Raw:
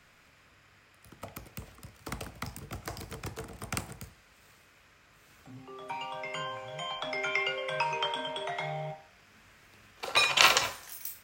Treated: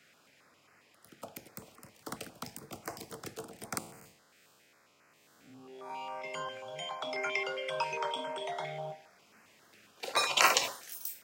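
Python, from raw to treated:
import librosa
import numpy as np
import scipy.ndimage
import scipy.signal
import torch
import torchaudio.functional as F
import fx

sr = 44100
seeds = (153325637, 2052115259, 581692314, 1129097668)

y = fx.spec_blur(x, sr, span_ms=117.0, at=(3.78, 6.24))
y = scipy.signal.sosfilt(scipy.signal.butter(2, 220.0, 'highpass', fs=sr, output='sos'), y)
y = fx.filter_held_notch(y, sr, hz=7.4, low_hz=980.0, high_hz=3500.0)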